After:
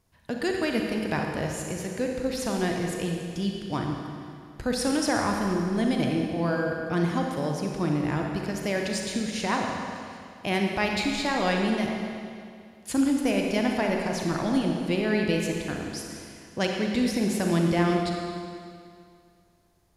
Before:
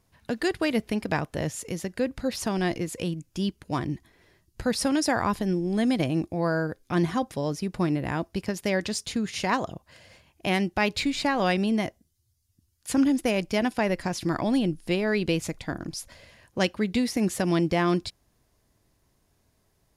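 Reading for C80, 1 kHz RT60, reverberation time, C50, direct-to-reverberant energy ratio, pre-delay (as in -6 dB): 2.5 dB, 2.3 s, 2.3 s, 1.5 dB, 0.5 dB, 39 ms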